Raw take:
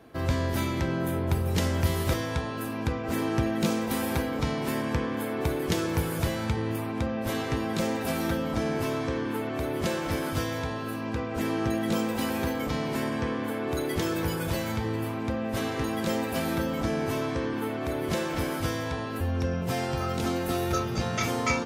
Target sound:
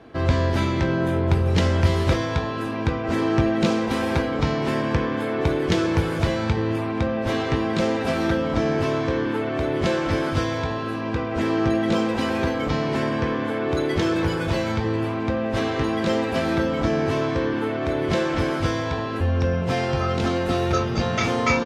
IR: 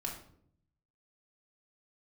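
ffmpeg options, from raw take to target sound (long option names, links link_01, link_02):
-filter_complex "[0:a]lowpass=4800,asplit=2[link_01][link_02];[link_02]adelay=21,volume=-11dB[link_03];[link_01][link_03]amix=inputs=2:normalize=0,volume=6dB"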